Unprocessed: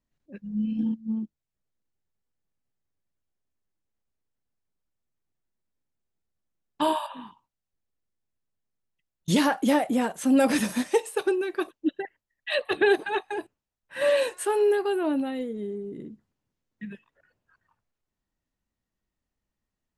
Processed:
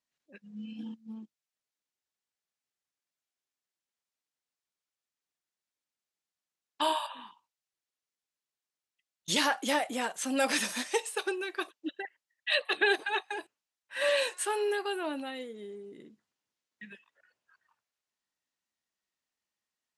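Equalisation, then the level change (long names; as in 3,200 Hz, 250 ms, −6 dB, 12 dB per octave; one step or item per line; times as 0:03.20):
high-pass filter 1,100 Hz 6 dB per octave
high-frequency loss of the air 55 metres
high-shelf EQ 3,600 Hz +8.5 dB
0.0 dB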